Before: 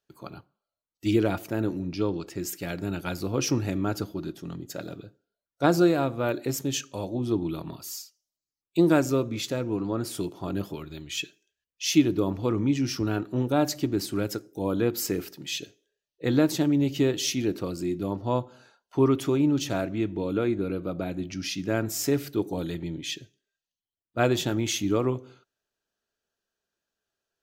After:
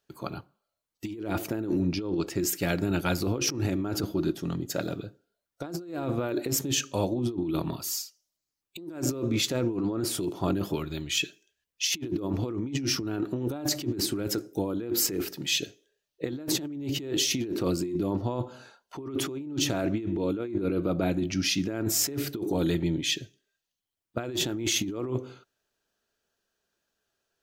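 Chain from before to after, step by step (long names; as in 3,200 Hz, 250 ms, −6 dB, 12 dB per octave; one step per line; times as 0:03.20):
dynamic equaliser 340 Hz, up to +6 dB, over −36 dBFS, Q 2.9
compressor whose output falls as the input rises −30 dBFS, ratio −1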